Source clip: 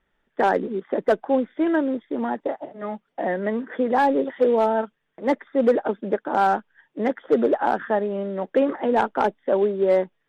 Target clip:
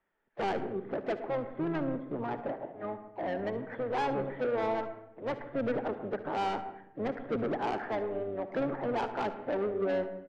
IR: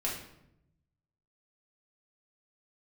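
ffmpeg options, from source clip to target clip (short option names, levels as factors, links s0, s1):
-filter_complex "[0:a]acrossover=split=240 2600:gain=0.2 1 0.158[s0][s1][s2];[s0][s1][s2]amix=inputs=3:normalize=0,asoftclip=type=tanh:threshold=0.0794,asplit=4[s3][s4][s5][s6];[s4]asetrate=22050,aresample=44100,atempo=2,volume=0.398[s7];[s5]asetrate=52444,aresample=44100,atempo=0.840896,volume=0.141[s8];[s6]asetrate=55563,aresample=44100,atempo=0.793701,volume=0.126[s9];[s3][s7][s8][s9]amix=inputs=4:normalize=0,aecho=1:1:59|73:0.133|0.133,asplit=2[s10][s11];[1:a]atrim=start_sample=2205,lowpass=2200,adelay=109[s12];[s11][s12]afir=irnorm=-1:irlink=0,volume=0.178[s13];[s10][s13]amix=inputs=2:normalize=0,volume=0.473"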